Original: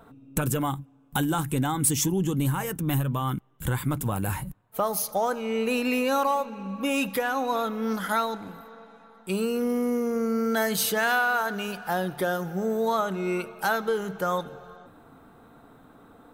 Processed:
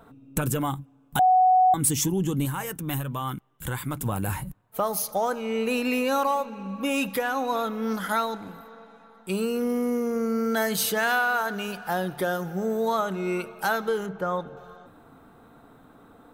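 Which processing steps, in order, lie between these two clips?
0:01.19–0:01.74: beep over 742 Hz −14.5 dBFS
0:02.45–0:04.01: low-shelf EQ 490 Hz −5.5 dB
0:14.06–0:14.57: low-pass filter 1,600 Hz 6 dB per octave

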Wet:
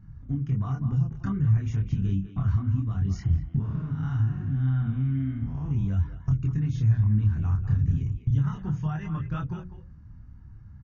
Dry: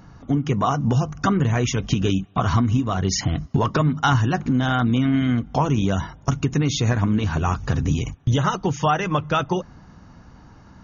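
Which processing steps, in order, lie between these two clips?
0:03.60–0:05.71: spectrum smeared in time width 201 ms
drawn EQ curve 110 Hz 0 dB, 580 Hz −28 dB, 1,700 Hz −19 dB, 3,400 Hz −28 dB
far-end echo of a speakerphone 200 ms, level −10 dB
multi-voice chorus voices 2, 0.32 Hz, delay 27 ms, depth 3.5 ms
mains-hum notches 60/120/180/240/300/360/420/480/540 Hz
downward compressor 1.5 to 1, threshold −31 dBFS, peak gain reduction 5 dB
level +6.5 dB

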